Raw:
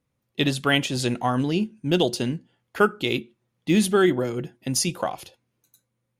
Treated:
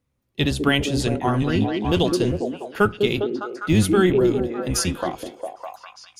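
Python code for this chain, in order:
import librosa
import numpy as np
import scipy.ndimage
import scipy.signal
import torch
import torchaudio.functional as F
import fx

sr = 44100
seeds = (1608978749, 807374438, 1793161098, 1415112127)

y = fx.octave_divider(x, sr, octaves=1, level_db=-1.0)
y = fx.echo_stepped(y, sr, ms=202, hz=330.0, octaves=0.7, feedback_pct=70, wet_db=0)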